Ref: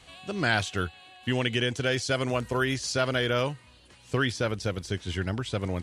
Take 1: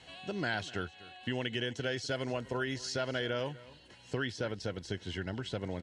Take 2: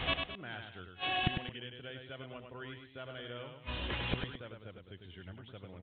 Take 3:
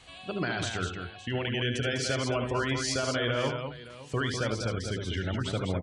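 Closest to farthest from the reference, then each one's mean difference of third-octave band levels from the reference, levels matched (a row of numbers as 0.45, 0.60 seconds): 1, 3, 2; 3.5, 7.0, 13.0 decibels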